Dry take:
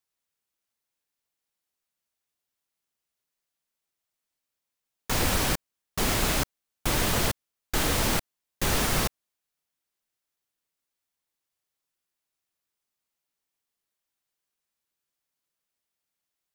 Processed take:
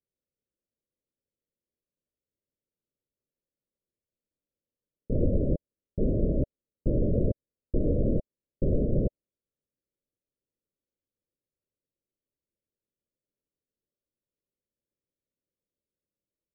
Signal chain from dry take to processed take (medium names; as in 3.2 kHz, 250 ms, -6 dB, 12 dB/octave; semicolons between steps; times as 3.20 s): steep low-pass 600 Hz 96 dB/octave; trim +3.5 dB